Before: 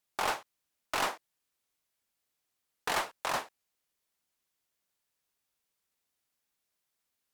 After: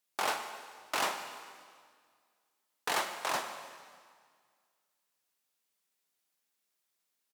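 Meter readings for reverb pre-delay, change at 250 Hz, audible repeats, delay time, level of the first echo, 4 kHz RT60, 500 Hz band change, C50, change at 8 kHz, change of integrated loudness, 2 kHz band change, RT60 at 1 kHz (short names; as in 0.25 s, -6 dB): 6 ms, -1.5 dB, 4, 0.146 s, -18.0 dB, 1.7 s, -0.5 dB, 8.0 dB, +1.5 dB, -1.0 dB, 0.0 dB, 1.9 s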